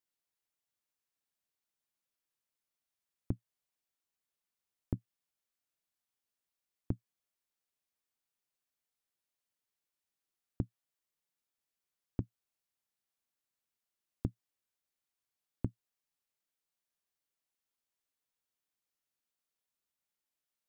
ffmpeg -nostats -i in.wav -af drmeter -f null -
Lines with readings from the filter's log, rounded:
Channel 1: DR: 23.5
Overall DR: 23.5